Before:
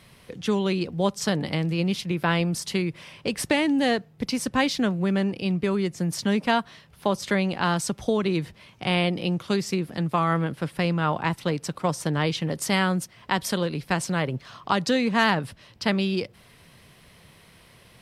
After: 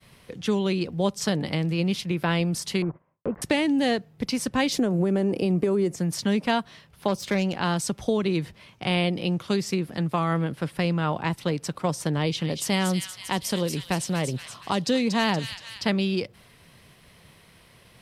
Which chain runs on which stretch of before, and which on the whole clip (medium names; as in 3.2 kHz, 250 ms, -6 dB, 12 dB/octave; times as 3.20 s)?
2.82–3.42 s: block-companded coder 3-bit + low-pass 1.2 kHz 24 dB/octave + gate -47 dBFS, range -18 dB
4.72–5.96 s: FFT filter 100 Hz 0 dB, 410 Hz +12 dB, 3.8 kHz -3 dB, 7.3 kHz +8 dB + compression 10:1, threshold -18 dBFS
7.08–7.56 s: self-modulated delay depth 0.098 ms + peaking EQ 1.9 kHz -4 dB 0.2 oct
12.14–15.86 s: peaking EQ 1.5 kHz -4.5 dB 0.73 oct + feedback echo behind a high-pass 236 ms, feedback 53%, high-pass 2.9 kHz, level -4.5 dB
whole clip: expander -51 dBFS; dynamic bell 1.3 kHz, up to -4 dB, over -33 dBFS, Q 0.93